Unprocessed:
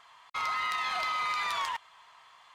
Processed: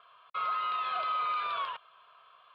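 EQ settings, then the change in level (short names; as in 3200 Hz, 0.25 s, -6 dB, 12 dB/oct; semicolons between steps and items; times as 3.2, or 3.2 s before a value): HPF 170 Hz 12 dB/oct; air absorption 390 m; fixed phaser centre 1300 Hz, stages 8; +4.0 dB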